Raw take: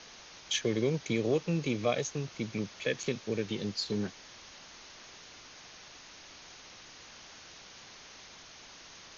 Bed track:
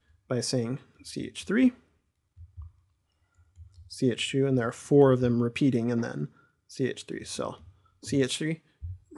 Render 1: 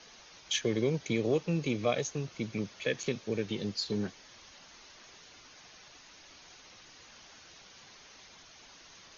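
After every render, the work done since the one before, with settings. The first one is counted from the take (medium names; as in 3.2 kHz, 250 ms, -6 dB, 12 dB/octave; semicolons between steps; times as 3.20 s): noise reduction 6 dB, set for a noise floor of -52 dBFS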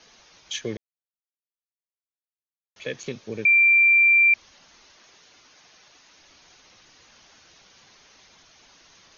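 0.77–2.76 s: mute; 3.45–4.34 s: bleep 2.36 kHz -13 dBFS; 4.92–6.18 s: bass shelf 130 Hz -8 dB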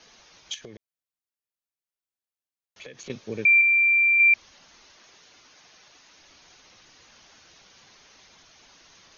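0.54–3.10 s: compression 16:1, threshold -38 dBFS; 3.61–4.20 s: distance through air 250 m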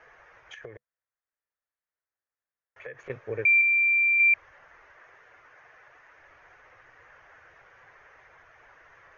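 FFT filter 130 Hz 0 dB, 210 Hz -16 dB, 490 Hz +4 dB, 860 Hz +2 dB, 1.8 kHz +8 dB, 4.1 kHz -25 dB, 6.6 kHz -21 dB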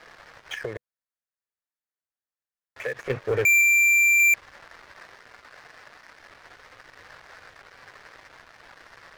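waveshaping leveller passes 3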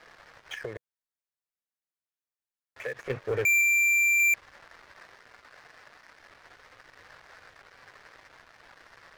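trim -4.5 dB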